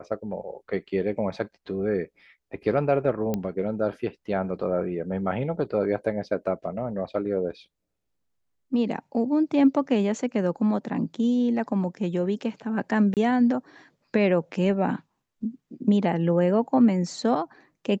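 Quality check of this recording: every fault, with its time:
3.34 pop -14 dBFS
13.14–13.17 gap 28 ms

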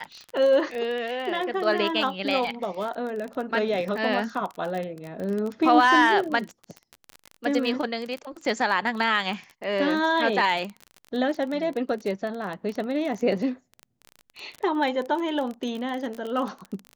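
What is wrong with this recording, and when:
crackle 28/s -29 dBFS

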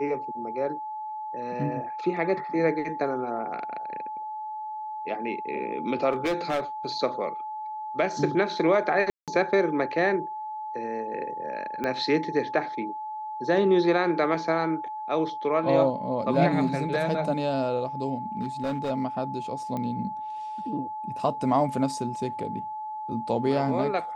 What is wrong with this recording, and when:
tone 860 Hz -32 dBFS
6.12–6.61 clipped -22 dBFS
9.1–9.28 gap 0.177 s
11.84 pop -16 dBFS
18.37–18.91 clipped -24 dBFS
19.77 pop -20 dBFS

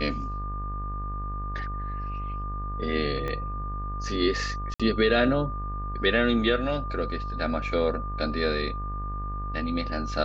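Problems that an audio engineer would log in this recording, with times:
buzz 50 Hz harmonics 38 -33 dBFS
tone 1200 Hz -35 dBFS
3.28 pop -20 dBFS
4.74–4.8 gap 56 ms

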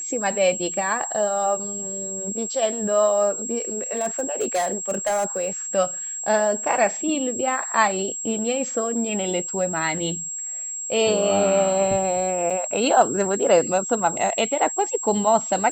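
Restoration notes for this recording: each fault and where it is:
tone 7600 Hz -28 dBFS
3.92–5.48 clipped -18 dBFS
12.5–12.51 gap 5.3 ms

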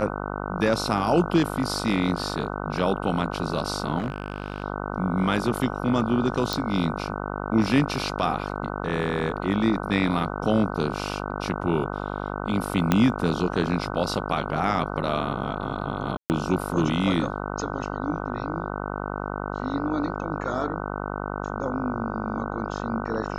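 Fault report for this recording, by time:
buzz 50 Hz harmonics 30 -31 dBFS
3.98–4.64 clipped -22.5 dBFS
6.53 pop
12.92 pop -6 dBFS
16.17–16.3 gap 0.129 s

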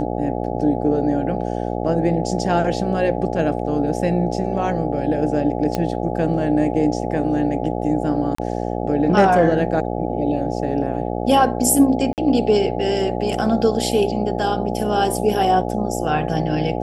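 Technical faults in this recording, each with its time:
buzz 60 Hz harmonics 14 -24 dBFS
5.75 pop -8 dBFS
8.35–8.38 gap 34 ms
12.13–12.18 gap 48 ms

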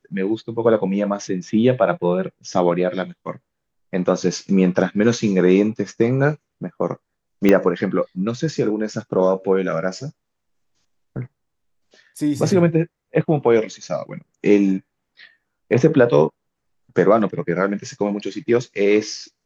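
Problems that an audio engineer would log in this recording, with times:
7.49 pop -4 dBFS

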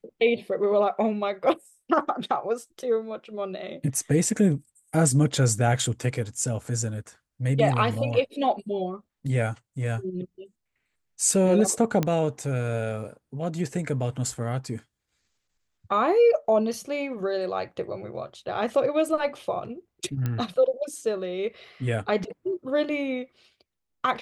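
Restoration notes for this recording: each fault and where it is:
12.03 pop -11 dBFS
20.26 pop -16 dBFS

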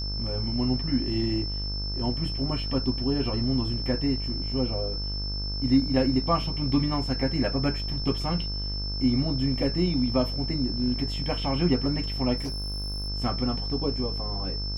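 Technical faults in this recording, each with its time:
buzz 50 Hz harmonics 33 -32 dBFS
tone 5300 Hz -33 dBFS
12.37–13.09 clipped -28 dBFS

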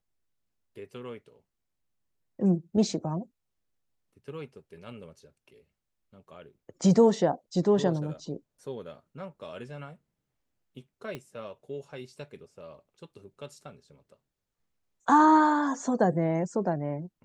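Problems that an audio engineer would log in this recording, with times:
11.15 pop -23 dBFS

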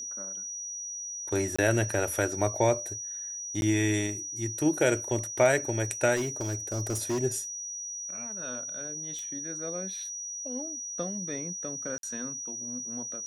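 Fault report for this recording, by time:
tone 5800 Hz -35 dBFS
1.56–1.58 gap 25 ms
3.61–3.62 gap 11 ms
6.15–7.19 clipped -25.5 dBFS
9.19 pop -28 dBFS
11.98–12.03 gap 52 ms

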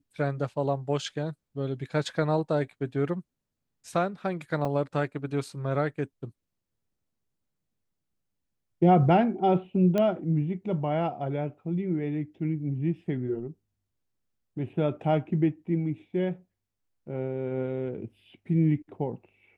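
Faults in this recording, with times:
4.65 gap 3.3 ms
9.98 pop -15 dBFS

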